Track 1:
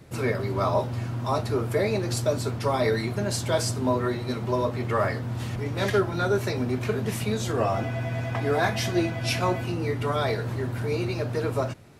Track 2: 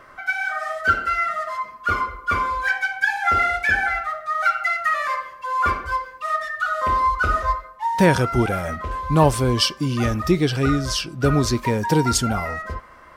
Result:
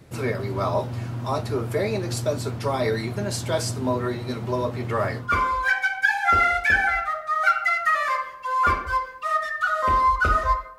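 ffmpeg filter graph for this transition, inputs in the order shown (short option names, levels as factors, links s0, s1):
-filter_complex "[0:a]apad=whole_dur=10.78,atrim=end=10.78,atrim=end=5.34,asetpts=PTS-STARTPTS[s0];[1:a]atrim=start=2.15:end=7.77,asetpts=PTS-STARTPTS[s1];[s0][s1]acrossfade=d=0.18:c1=tri:c2=tri"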